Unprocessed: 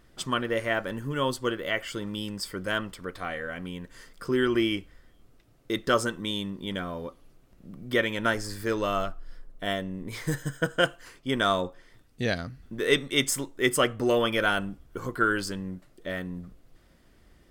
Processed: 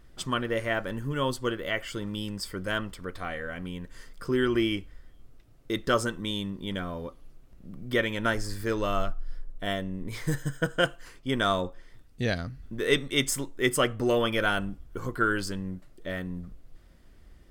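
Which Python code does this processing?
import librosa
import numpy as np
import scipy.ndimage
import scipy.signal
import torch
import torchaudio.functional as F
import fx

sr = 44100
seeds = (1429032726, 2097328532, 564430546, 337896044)

y = fx.low_shelf(x, sr, hz=88.0, db=10.0)
y = F.gain(torch.from_numpy(y), -1.5).numpy()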